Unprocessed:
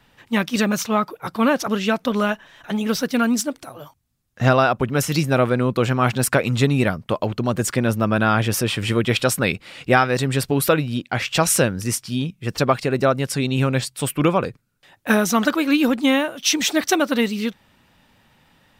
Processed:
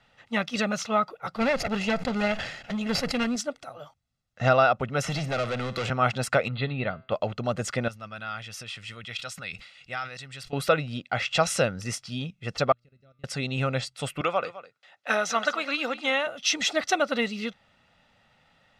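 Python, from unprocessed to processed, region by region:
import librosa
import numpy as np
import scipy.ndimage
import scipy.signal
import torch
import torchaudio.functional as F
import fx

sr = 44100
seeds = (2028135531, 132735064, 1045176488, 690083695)

y = fx.chain(x, sr, fx.lower_of_two(delay_ms=0.44),
    fx.peak_eq(hz=95.0, db=4.0, octaves=2.3),
    fx.sustainer(db_per_s=70.0), at=(1.37, 3.36))
y = fx.chain(y, sr, fx.clip_hard(threshold_db=-20.0),
    fx.room_flutter(wall_m=9.7, rt60_s=0.22),
    fx.band_squash(depth_pct=100), at=(5.04, 5.9))
y = fx.chain(y, sr, fx.brickwall_lowpass(high_hz=4700.0),
    fx.comb_fb(f0_hz=130.0, decay_s=0.45, harmonics='all', damping=0.0, mix_pct=40), at=(6.48, 7.12))
y = fx.chain(y, sr, fx.tone_stack(knobs='5-5-5'),
    fx.sustainer(db_per_s=85.0), at=(7.88, 10.53))
y = fx.chain(y, sr, fx.tone_stack(knobs='10-0-1'),
    fx.level_steps(step_db=13),
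    fx.comb_fb(f0_hz=120.0, decay_s=1.7, harmonics='all', damping=0.0, mix_pct=70), at=(12.72, 13.24))
y = fx.chain(y, sr, fx.weighting(curve='A'),
    fx.echo_single(ms=207, db=-16.0), at=(14.21, 16.27))
y = scipy.signal.sosfilt(scipy.signal.butter(2, 5700.0, 'lowpass', fs=sr, output='sos'), y)
y = fx.low_shelf(y, sr, hz=190.0, db=-8.0)
y = y + 0.53 * np.pad(y, (int(1.5 * sr / 1000.0), 0))[:len(y)]
y = y * librosa.db_to_amplitude(-5.0)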